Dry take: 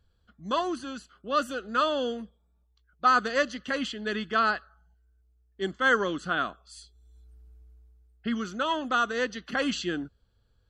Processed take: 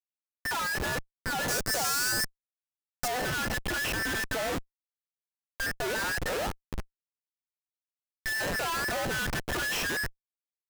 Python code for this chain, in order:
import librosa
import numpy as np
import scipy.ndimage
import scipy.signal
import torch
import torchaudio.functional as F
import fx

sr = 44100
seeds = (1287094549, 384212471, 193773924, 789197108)

y = fx.band_invert(x, sr, width_hz=2000)
y = fx.schmitt(y, sr, flips_db=-37.5)
y = fx.high_shelf_res(y, sr, hz=4300.0, db=8.0, q=1.5, at=(1.48, 3.08))